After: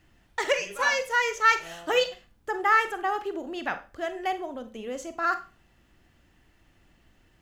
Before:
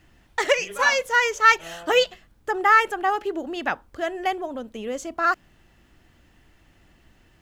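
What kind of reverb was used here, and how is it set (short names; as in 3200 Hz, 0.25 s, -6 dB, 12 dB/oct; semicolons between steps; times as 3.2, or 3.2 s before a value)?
Schroeder reverb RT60 0.32 s, combs from 32 ms, DRR 9.5 dB; gain -5 dB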